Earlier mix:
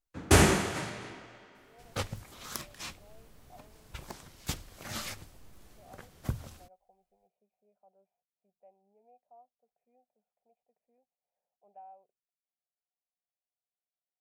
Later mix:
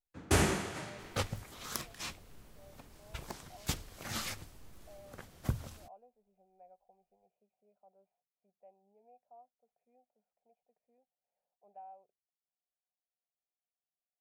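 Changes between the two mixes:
first sound -7.0 dB; second sound: entry -0.80 s

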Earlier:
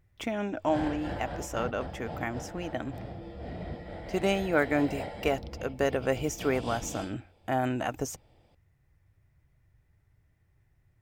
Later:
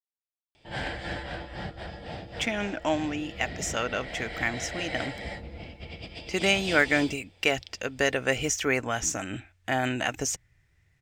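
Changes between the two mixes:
speech: entry +2.20 s; master: add high-order bell 3.7 kHz +10.5 dB 2.7 oct

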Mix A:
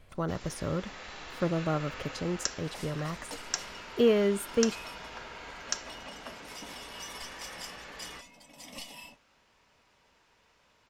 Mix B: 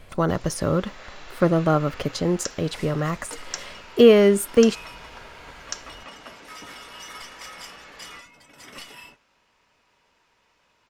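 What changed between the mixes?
speech +11.0 dB; second sound: remove static phaser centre 390 Hz, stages 6; master: add peaking EQ 74 Hz -3.5 dB 2.2 oct

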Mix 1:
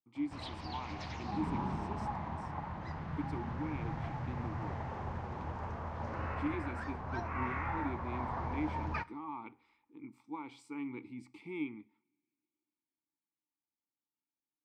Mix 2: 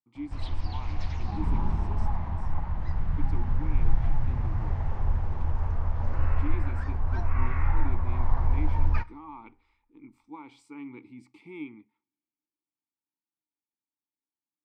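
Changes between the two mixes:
speech: send -10.5 dB; background: remove high-pass 170 Hz 12 dB/octave

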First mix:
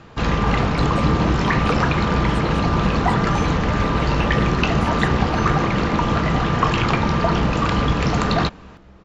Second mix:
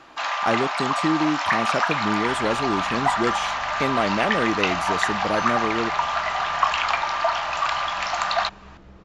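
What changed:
speech +9.5 dB; first sound: add steep high-pass 620 Hz 72 dB/octave

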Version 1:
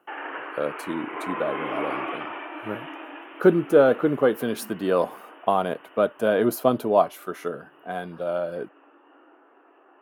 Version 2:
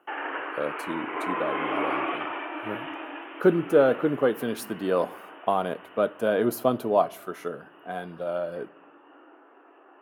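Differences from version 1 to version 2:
speech -6.0 dB; reverb: on, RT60 0.75 s

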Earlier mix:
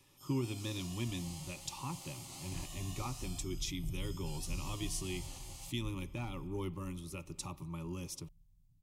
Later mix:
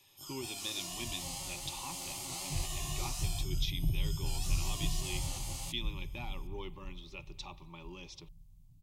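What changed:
speech: add cabinet simulation 280–5100 Hz, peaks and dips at 290 Hz -8 dB, 520 Hz -5 dB, 780 Hz +3 dB, 1.3 kHz -7 dB, 2.5 kHz +3 dB, 3.6 kHz +8 dB; first sound +8.5 dB; second sound +9.0 dB

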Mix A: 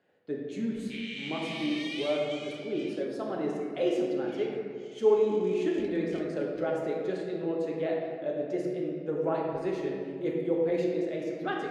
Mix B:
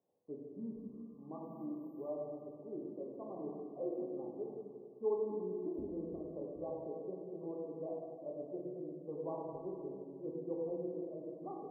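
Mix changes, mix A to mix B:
speech -12.0 dB; master: add brick-wall FIR band-stop 1.2–13 kHz

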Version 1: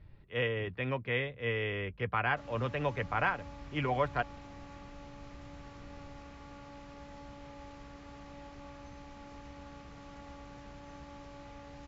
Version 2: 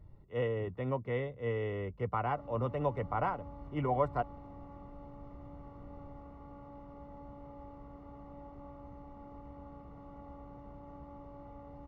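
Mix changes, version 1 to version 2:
speech: remove distance through air 330 m; master: add Savitzky-Golay filter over 65 samples

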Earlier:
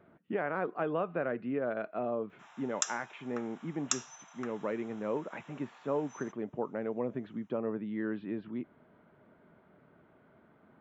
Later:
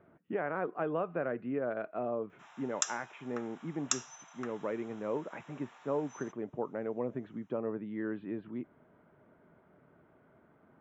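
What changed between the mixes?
speech: add distance through air 270 m; master: add peaking EQ 210 Hz -3.5 dB 0.36 oct

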